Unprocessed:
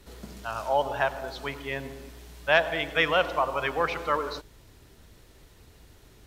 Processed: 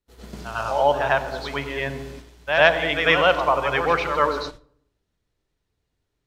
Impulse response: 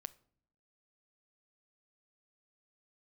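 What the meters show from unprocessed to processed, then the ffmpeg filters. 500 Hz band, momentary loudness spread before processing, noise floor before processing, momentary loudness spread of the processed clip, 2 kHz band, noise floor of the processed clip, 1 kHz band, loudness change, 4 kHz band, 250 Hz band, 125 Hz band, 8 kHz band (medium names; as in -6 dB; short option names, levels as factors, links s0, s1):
+6.5 dB, 17 LU, -55 dBFS, 17 LU, +6.5 dB, -77 dBFS, +6.5 dB, +6.5 dB, +6.0 dB, +6.5 dB, +7.0 dB, no reading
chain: -filter_complex "[0:a]agate=range=0.0355:threshold=0.00631:ratio=16:detection=peak,asplit=2[s0][s1];[1:a]atrim=start_sample=2205,lowpass=7500,adelay=98[s2];[s1][s2]afir=irnorm=-1:irlink=0,volume=3.76[s3];[s0][s3]amix=inputs=2:normalize=0,volume=0.841"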